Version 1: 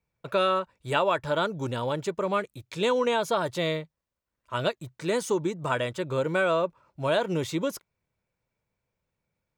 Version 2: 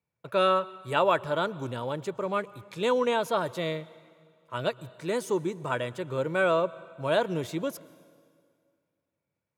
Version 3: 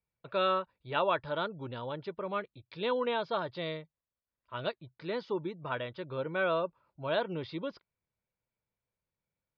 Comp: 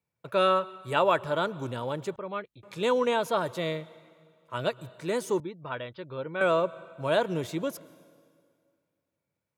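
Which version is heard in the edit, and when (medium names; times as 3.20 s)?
2
2.16–2.63 s: from 3
5.40–6.41 s: from 3
not used: 1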